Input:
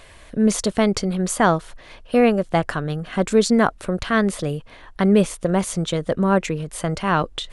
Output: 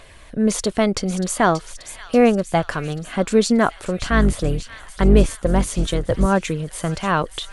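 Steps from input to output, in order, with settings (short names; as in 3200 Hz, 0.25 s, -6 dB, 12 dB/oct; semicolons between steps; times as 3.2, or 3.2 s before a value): 4.01–6.26 octaver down 2 oct, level +2 dB; phaser 0.45 Hz, delay 4.2 ms, feedback 20%; thin delay 0.583 s, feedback 63%, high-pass 2400 Hz, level -10 dB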